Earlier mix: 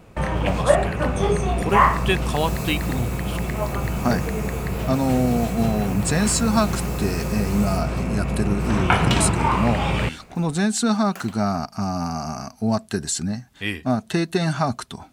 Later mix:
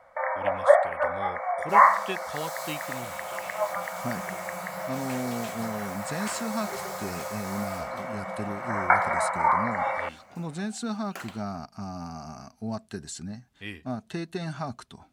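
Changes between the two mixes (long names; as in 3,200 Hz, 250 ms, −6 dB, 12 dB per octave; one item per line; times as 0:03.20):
speech −11.5 dB
first sound: add linear-phase brick-wall band-pass 500–2,300 Hz
master: add high-shelf EQ 8,600 Hz −6 dB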